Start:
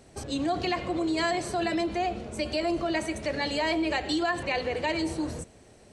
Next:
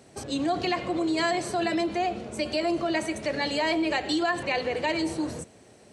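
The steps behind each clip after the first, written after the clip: high-pass 110 Hz 12 dB/octave; trim +1.5 dB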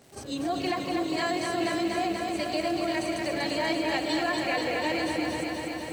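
reverse echo 39 ms -10.5 dB; crackle 370 per s -39 dBFS; bit-crushed delay 242 ms, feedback 80%, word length 9-bit, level -4 dB; trim -4 dB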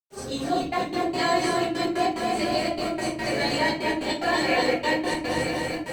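trance gate ".xxxxx.x.x" 146 bpm -60 dB; simulated room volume 32 m³, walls mixed, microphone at 1.1 m; trim -1.5 dB; Opus 48 kbps 48 kHz

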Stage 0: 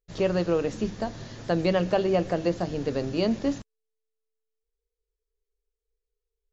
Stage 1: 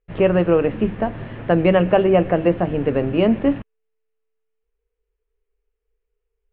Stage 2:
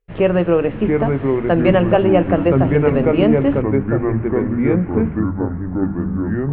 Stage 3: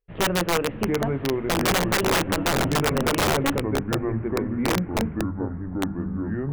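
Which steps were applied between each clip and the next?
steep low-pass 2.9 kHz 48 dB/octave; trim +8.5 dB
ever faster or slower copies 632 ms, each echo -4 st, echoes 3; trim +1 dB
integer overflow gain 8 dB; trim -7.5 dB

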